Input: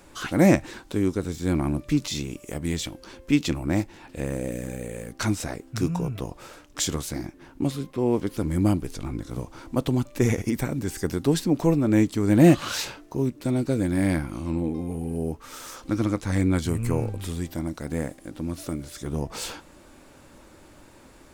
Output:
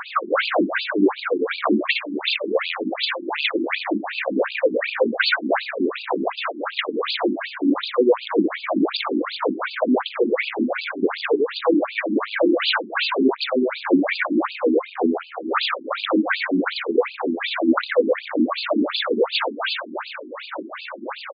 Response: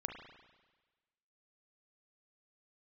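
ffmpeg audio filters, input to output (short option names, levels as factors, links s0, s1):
-filter_complex "[0:a]acompressor=threshold=0.0447:ratio=6,asplit=2[s0][s1];[s1]aecho=0:1:60|126|198.6|278.5|366.3:0.631|0.398|0.251|0.158|0.1[s2];[s0][s2]amix=inputs=2:normalize=0,aphaser=in_gain=1:out_gain=1:delay=2.3:decay=0.61:speed=1.8:type=sinusoidal,asplit=2[s3][s4];[s4]highpass=f=720:p=1,volume=22.4,asoftclip=type=tanh:threshold=0.398[s5];[s3][s5]amix=inputs=2:normalize=0,lowpass=f=7500:p=1,volume=0.501,afftfilt=real='re*between(b*sr/1024,260*pow(3500/260,0.5+0.5*sin(2*PI*2.7*pts/sr))/1.41,260*pow(3500/260,0.5+0.5*sin(2*PI*2.7*pts/sr))*1.41)':imag='im*between(b*sr/1024,260*pow(3500/260,0.5+0.5*sin(2*PI*2.7*pts/sr))/1.41,260*pow(3500/260,0.5+0.5*sin(2*PI*2.7*pts/sr))*1.41)':win_size=1024:overlap=0.75,volume=1.68"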